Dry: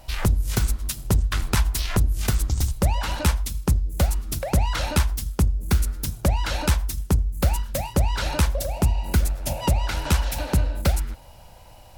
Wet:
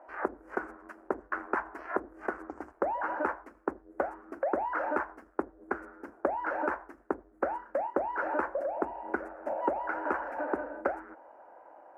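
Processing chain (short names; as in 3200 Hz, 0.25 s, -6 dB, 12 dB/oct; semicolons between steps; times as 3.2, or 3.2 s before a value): elliptic band-pass 310–1600 Hz, stop band 40 dB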